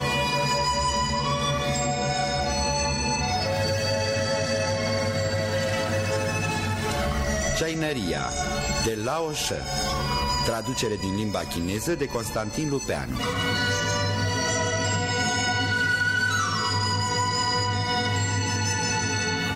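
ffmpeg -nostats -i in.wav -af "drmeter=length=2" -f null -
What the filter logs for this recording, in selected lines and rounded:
Channel 1: DR: 6.3
Overall DR: 6.3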